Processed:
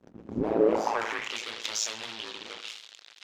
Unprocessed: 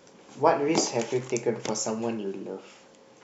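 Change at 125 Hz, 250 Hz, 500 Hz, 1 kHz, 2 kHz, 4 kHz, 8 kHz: -6.5 dB, -3.5 dB, -2.0 dB, -3.5 dB, +3.0 dB, +3.0 dB, no reading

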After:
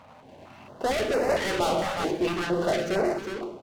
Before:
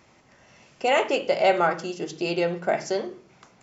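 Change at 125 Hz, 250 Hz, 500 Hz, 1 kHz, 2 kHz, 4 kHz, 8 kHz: +1.5 dB, +2.0 dB, -1.5 dB, -3.5 dB, -2.5 dB, -1.0 dB, no reading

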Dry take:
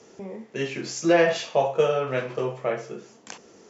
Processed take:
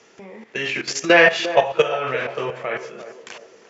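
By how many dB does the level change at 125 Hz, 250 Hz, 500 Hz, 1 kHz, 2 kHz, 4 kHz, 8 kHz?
-2.0 dB, +0.5 dB, +3.0 dB, +5.5 dB, +12.0 dB, +9.0 dB, no reading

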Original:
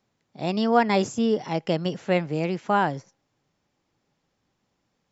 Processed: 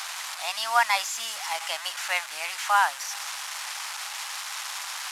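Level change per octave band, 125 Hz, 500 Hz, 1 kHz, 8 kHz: under -40 dB, -14.5 dB, +1.0 dB, no reading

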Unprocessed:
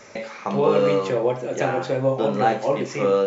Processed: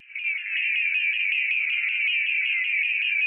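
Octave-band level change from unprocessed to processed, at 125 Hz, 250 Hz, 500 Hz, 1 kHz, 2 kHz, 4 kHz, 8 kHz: under -40 dB, under -40 dB, under -40 dB, under -35 dB, +13.5 dB, +8.5 dB, no reading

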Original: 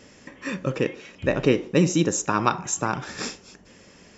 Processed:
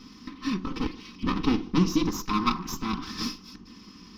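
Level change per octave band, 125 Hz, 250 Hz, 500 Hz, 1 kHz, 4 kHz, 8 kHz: -5.0 dB, -1.0 dB, -12.5 dB, -3.5 dB, +0.5 dB, no reading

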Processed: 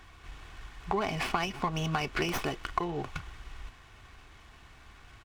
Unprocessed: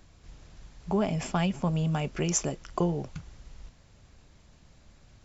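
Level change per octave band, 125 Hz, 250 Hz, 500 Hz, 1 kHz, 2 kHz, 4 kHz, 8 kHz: -7.5 dB, -7.0 dB, -3.0 dB, +3.5 dB, +6.0 dB, +3.5 dB, no reading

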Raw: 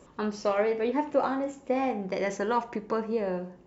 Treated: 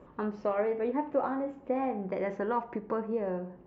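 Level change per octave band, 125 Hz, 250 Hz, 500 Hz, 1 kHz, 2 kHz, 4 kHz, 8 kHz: -2.0 dB, -2.5 dB, -3.0 dB, -3.5 dB, -6.5 dB, under -15 dB, no reading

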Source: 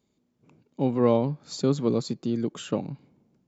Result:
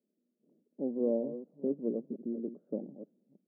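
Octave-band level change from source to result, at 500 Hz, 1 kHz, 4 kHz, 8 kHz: -8.0 dB, under -20 dB, under -40 dB, no reading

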